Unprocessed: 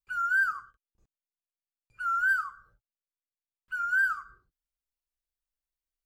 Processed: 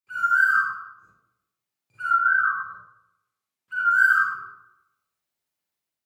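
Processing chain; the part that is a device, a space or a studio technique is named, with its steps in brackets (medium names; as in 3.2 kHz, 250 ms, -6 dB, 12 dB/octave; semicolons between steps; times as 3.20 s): 2.02–3.91 s: low-pass that closes with the level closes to 1.3 kHz, closed at -27 dBFS; far laptop microphone (reverberation RT60 0.85 s, pre-delay 34 ms, DRR -9 dB; high-pass 100 Hz 24 dB/octave; level rider gain up to 4 dB); trim -3 dB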